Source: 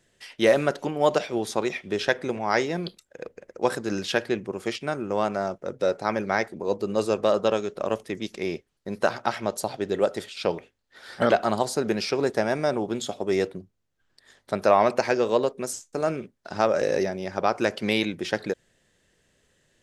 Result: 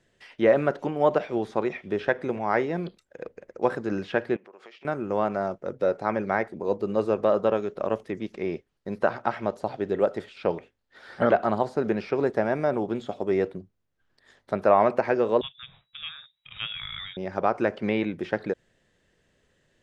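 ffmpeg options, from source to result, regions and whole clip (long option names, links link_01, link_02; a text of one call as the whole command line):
ffmpeg -i in.wav -filter_complex "[0:a]asettb=1/sr,asplit=3[link_01][link_02][link_03];[link_01]atrim=end=4.364[link_04];[link_02]atrim=start=4.36:end=4.85,asetpts=PTS-STARTPTS,afade=type=in:duration=0.004:curve=qsin,afade=type=out:start_time=0.486:duration=0.004:curve=qsin,acompressor=threshold=-37dB:ratio=12:attack=3.2:release=140:knee=1:detection=peak,highpass=560,lowpass=4600[link_05];[link_03]atrim=start=4.846[link_06];[link_04][link_05]acrossfade=duration=0.004:curve1=hsin:curve2=qsin[link_07];[link_07][link_06]acrossfade=duration=0.004:curve1=qsin:curve2=hsin,asettb=1/sr,asplit=3[link_08][link_09][link_10];[link_08]atrim=end=15.414[link_11];[link_09]atrim=start=15.41:end=17.17,asetpts=PTS-STARTPTS,afade=type=in:duration=0.004:curve=qsin,afade=type=out:start_time=1.756:duration=0.004:curve=qsin,lowpass=frequency=3300:width_type=q:width=0.5098,lowpass=frequency=3300:width_type=q:width=0.6013,lowpass=frequency=3300:width_type=q:width=0.9,lowpass=frequency=3300:width_type=q:width=2.563,afreqshift=-3900,lowshelf=frequency=200:width_type=q:width=3:gain=11.5[link_12];[link_10]atrim=start=17.166[link_13];[link_11][link_12]acrossfade=duration=0.004:curve1=hsin:curve2=qsin[link_14];[link_14][link_13]acrossfade=duration=0.004:curve1=qsin:curve2=hsin,acrossover=split=2500[link_15][link_16];[link_16]acompressor=threshold=-49dB:ratio=4:attack=1:release=60[link_17];[link_15][link_17]amix=inputs=2:normalize=0,aemphasis=mode=reproduction:type=50kf" out.wav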